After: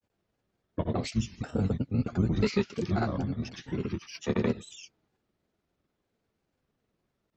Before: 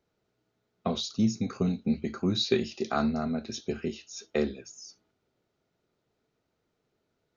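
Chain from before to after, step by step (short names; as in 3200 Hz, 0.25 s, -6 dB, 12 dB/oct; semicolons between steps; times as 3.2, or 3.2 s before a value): grains 0.1 s, pitch spread up and down by 3 st; harmoniser -12 st 0 dB; record warp 33 1/3 rpm, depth 100 cents; gain -2.5 dB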